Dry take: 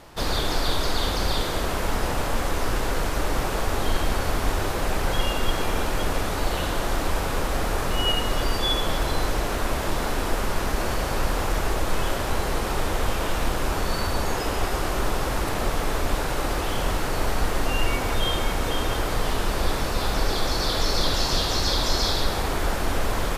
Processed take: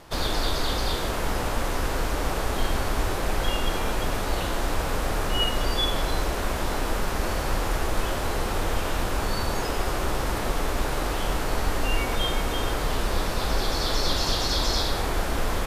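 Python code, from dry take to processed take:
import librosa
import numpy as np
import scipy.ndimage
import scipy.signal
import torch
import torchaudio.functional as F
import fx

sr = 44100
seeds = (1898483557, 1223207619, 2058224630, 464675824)

y = fx.stretch_vocoder(x, sr, factor=0.67)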